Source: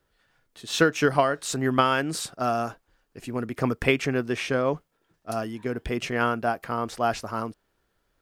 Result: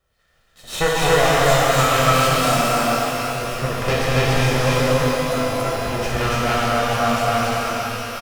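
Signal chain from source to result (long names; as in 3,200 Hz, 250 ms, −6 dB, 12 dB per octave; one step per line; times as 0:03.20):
lower of the sound and its delayed copy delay 1.6 ms
loudspeakers that aren't time-aligned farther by 81 metres −10 dB, 97 metres 0 dB
reverb with rising layers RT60 3.6 s, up +12 semitones, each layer −8 dB, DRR −5.5 dB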